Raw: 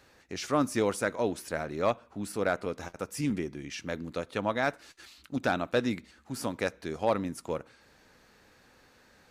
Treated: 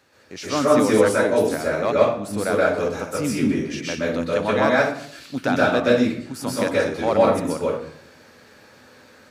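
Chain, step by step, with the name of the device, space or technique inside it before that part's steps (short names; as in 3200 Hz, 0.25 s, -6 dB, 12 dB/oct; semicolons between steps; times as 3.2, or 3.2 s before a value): far laptop microphone (reverb RT60 0.60 s, pre-delay 0.119 s, DRR -5.5 dB; HPF 100 Hz; AGC gain up to 4.5 dB)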